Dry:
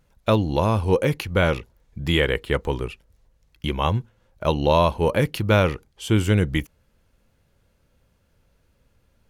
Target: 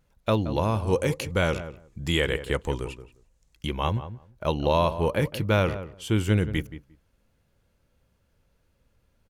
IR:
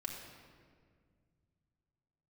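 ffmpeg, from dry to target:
-filter_complex "[0:a]asettb=1/sr,asplit=3[s0][s1][s2];[s0]atrim=end=0.874[s3];[s1]atrim=start=0.87:end=3.67,asetpts=PTS-STARTPTS,afade=t=in:d=0.004:c=qsin,afade=t=out:st=2.796:d=0.004:c=qsin,equalizer=f=7500:t=o:w=0.88:g=11[s4];[s2]atrim=start=3.666[s5];[s3][s4]acrossfade=d=0.004:c1=hsin:c2=qsin[s6];[s6][s5]acrossfade=d=0.004:c1=qsin:c2=hsin,asplit=2[s7][s8];[s8]adelay=176,lowpass=f=1300:p=1,volume=0.266,asplit=2[s9][s10];[s10]adelay=176,lowpass=f=1300:p=1,volume=0.15[s11];[s7][s9][s11]amix=inputs=3:normalize=0,volume=0.596"

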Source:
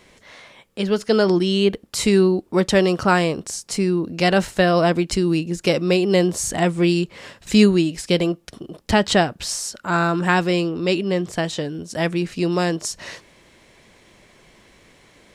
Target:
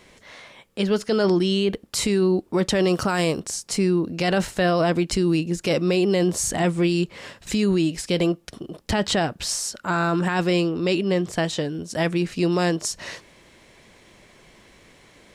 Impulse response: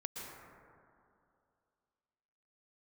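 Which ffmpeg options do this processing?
-filter_complex "[0:a]asettb=1/sr,asplit=3[s0][s1][s2];[s0]atrim=end=2.934[s3];[s1]atrim=start=2.93:end=3.4,asetpts=PTS-STARTPTS,afade=t=in:d=0.004:c=qsin,afade=t=out:st=0.466:d=0.004:c=qsin,highshelf=f=6800:g=11.5[s4];[s2]atrim=start=3.396[s5];[s3][s4]acrossfade=d=0.004:c1=hsin:c2=qsin[s6];[s6][s5]acrossfade=d=0.004:c1=qsin:c2=hsin,alimiter=limit=0.224:level=0:latency=1:release=10"

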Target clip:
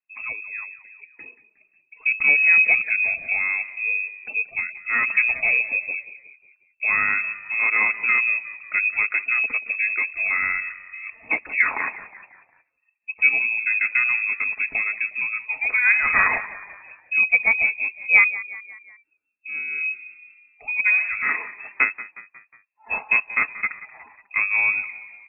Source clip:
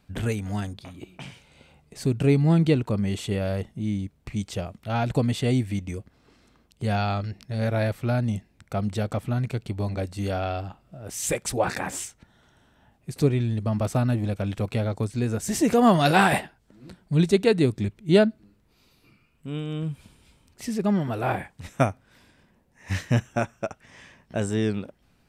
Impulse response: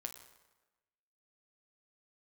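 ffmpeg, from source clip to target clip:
-filter_complex "[0:a]dynaudnorm=f=810:g=3:m=3.16,equalizer=f=270:t=o:w=0.57:g=-6,aecho=1:1:4.9:0.31,afftdn=nr=26:nf=-36,asplit=2[s0][s1];[s1]asetrate=33038,aresample=44100,atempo=1.33484,volume=0.141[s2];[s0][s2]amix=inputs=2:normalize=0,asplit=5[s3][s4][s5][s6][s7];[s4]adelay=181,afreqshift=36,volume=0.158[s8];[s5]adelay=362,afreqshift=72,volume=0.0794[s9];[s6]adelay=543,afreqshift=108,volume=0.0398[s10];[s7]adelay=724,afreqshift=144,volume=0.0197[s11];[s3][s8][s9][s10][s11]amix=inputs=5:normalize=0,lowpass=f=2300:t=q:w=0.5098,lowpass=f=2300:t=q:w=0.6013,lowpass=f=2300:t=q:w=0.9,lowpass=f=2300:t=q:w=2.563,afreqshift=-2700,volume=0.631"

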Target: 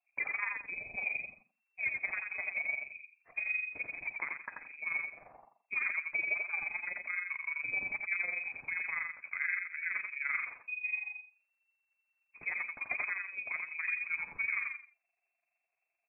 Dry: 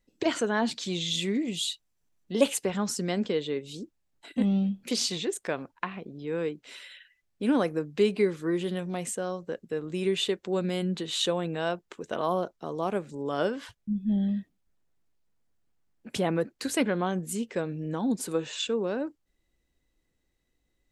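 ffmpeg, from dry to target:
-af "bandreject=f=50:t=h:w=6,bandreject=f=100:t=h:w=6,bandreject=f=150:t=h:w=6,bandreject=f=200:t=h:w=6,bandreject=f=250:t=h:w=6,bandreject=f=300:t=h:w=6,bandreject=f=350:t=h:w=6,tremolo=f=18:d=0.68,adynamicequalizer=threshold=0.00631:dfrequency=710:dqfactor=1.9:tfrequency=710:tqfactor=1.9:attack=5:release=100:ratio=0.375:range=2:mode=boostabove:tftype=bell,alimiter=limit=0.106:level=0:latency=1:release=332,lowshelf=f=130:g=-10,atempo=1.3,aecho=1:1:86|172|258:0.631|0.145|0.0334,lowpass=f=2300:t=q:w=0.5098,lowpass=f=2300:t=q:w=0.6013,lowpass=f=2300:t=q:w=0.9,lowpass=f=2300:t=q:w=2.563,afreqshift=-2700,volume=0.668" -ar 22050 -c:a libvorbis -b:a 48k

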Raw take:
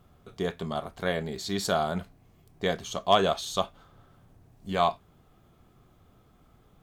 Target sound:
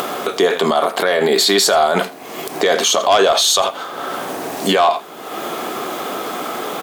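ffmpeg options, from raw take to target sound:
-filter_complex "[0:a]asettb=1/sr,asplit=3[s0][s1][s2];[s0]atrim=end=0.924[s3];[s1]atrim=start=0.92:end=1.59,asetpts=PTS-STARTPTS,afade=t=in:d=0.004:c=qsin,afade=t=out:st=0.666:d=0.004:c=qsin,equalizer=f=6100:w=2.6:g=-7.5[s4];[s2]atrim=start=1.586[s5];[s3][s4]acrossfade=d=0.004:c1=hsin:c2=qsin[s6];[s6][s5]acrossfade=d=0.004:c1=qsin:c2=hsin,acrossover=split=300[s7][s8];[s7]acrusher=bits=3:mix=0:aa=0.000001[s9];[s8]asoftclip=type=tanh:threshold=0.158[s10];[s9][s10]amix=inputs=2:normalize=0,acompressor=threshold=0.0355:ratio=6,asplit=2[s11][s12];[s12]aecho=0:1:84:0.0944[s13];[s11][s13]amix=inputs=2:normalize=0,acompressor=mode=upward:threshold=0.00708:ratio=2.5,alimiter=level_in=56.2:limit=0.891:release=50:level=0:latency=1,volume=0.596"

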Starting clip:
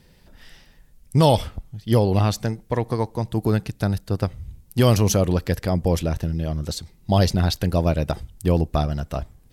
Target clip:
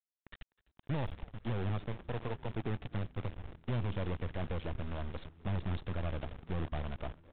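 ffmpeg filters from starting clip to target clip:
-filter_complex "[0:a]adynamicequalizer=threshold=0.0178:dfrequency=160:dqfactor=2.1:tfrequency=160:tqfactor=2.1:attack=5:release=100:ratio=0.375:range=2.5:mode=cutabove:tftype=bell,atempo=1.3,acrossover=split=230[s0][s1];[s1]alimiter=limit=0.15:level=0:latency=1:release=215[s2];[s0][s2]amix=inputs=2:normalize=0,highshelf=f=2400:g=-8,acrusher=bits=4:dc=4:mix=0:aa=0.000001,asoftclip=type=tanh:threshold=0.0501,asplit=6[s3][s4][s5][s6][s7][s8];[s4]adelay=252,afreqshift=-83,volume=0.0841[s9];[s5]adelay=504,afreqshift=-166,volume=0.0537[s10];[s6]adelay=756,afreqshift=-249,volume=0.0343[s11];[s7]adelay=1008,afreqshift=-332,volume=0.0221[s12];[s8]adelay=1260,afreqshift=-415,volume=0.0141[s13];[s3][s9][s10][s11][s12][s13]amix=inputs=6:normalize=0,volume=0.596" -ar 8000 -c:a adpcm_g726 -b:a 40k

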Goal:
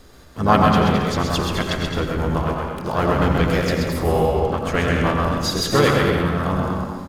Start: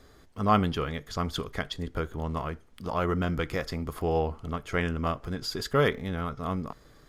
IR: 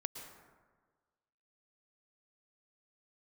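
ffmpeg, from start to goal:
-filter_complex "[0:a]acrossover=split=1100[s0][s1];[s0]acontrast=59[s2];[s2][s1]amix=inputs=2:normalize=0,asplit=4[s3][s4][s5][s6];[s4]asetrate=35002,aresample=44100,atempo=1.25992,volume=0.501[s7];[s5]asetrate=52444,aresample=44100,atempo=0.840896,volume=0.141[s8];[s6]asetrate=58866,aresample=44100,atempo=0.749154,volume=0.251[s9];[s3][s7][s8][s9]amix=inputs=4:normalize=0,highshelf=f=2200:g=10,aecho=1:1:130|214.5|269.4|305.1|328.3:0.631|0.398|0.251|0.158|0.1[s10];[1:a]atrim=start_sample=2205,asetrate=57330,aresample=44100[s11];[s10][s11]afir=irnorm=-1:irlink=0,volume=1.68"

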